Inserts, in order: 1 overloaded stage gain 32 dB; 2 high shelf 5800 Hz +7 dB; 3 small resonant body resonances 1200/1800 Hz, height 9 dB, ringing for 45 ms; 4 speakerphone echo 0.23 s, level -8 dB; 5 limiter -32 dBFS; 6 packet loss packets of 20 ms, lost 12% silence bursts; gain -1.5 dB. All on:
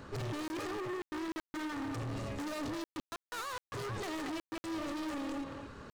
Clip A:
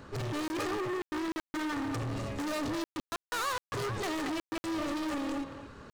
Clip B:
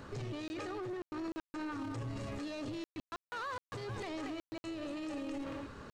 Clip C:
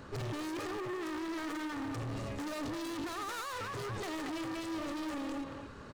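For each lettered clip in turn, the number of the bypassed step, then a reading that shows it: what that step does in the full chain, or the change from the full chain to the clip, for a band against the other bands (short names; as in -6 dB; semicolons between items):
5, mean gain reduction 4.0 dB; 1, distortion -5 dB; 6, momentary loudness spread change -2 LU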